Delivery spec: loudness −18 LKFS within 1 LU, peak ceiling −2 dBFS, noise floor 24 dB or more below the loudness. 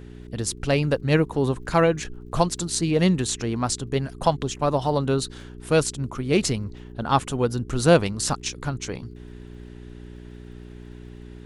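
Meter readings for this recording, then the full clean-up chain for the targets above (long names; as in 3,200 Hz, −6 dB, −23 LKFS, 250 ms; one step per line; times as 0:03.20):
crackle rate 45 per second; mains hum 60 Hz; hum harmonics up to 420 Hz; level of the hum −40 dBFS; integrated loudness −24.0 LKFS; sample peak −5.0 dBFS; target loudness −18.0 LKFS
→ click removal
hum removal 60 Hz, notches 7
level +6 dB
brickwall limiter −2 dBFS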